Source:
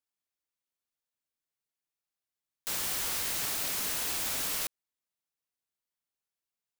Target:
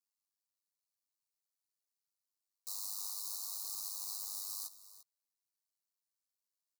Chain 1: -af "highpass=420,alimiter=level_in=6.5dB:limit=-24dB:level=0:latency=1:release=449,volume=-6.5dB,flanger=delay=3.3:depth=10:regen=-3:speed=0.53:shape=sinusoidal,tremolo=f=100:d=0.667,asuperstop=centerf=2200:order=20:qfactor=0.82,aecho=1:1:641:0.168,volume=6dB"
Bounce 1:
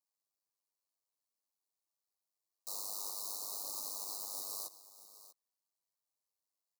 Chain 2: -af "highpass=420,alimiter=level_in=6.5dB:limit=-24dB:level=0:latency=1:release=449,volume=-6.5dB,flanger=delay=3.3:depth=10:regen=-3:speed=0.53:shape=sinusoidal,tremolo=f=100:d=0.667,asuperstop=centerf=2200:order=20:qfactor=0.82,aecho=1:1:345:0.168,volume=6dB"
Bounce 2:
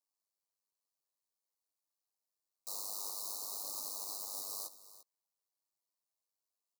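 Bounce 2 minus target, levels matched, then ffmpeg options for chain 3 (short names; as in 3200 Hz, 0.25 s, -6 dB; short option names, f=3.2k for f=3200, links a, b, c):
500 Hz band +14.0 dB
-af "highpass=1.4k,alimiter=level_in=6.5dB:limit=-24dB:level=0:latency=1:release=449,volume=-6.5dB,flanger=delay=3.3:depth=10:regen=-3:speed=0.53:shape=sinusoidal,tremolo=f=100:d=0.667,asuperstop=centerf=2200:order=20:qfactor=0.82,aecho=1:1:345:0.168,volume=6dB"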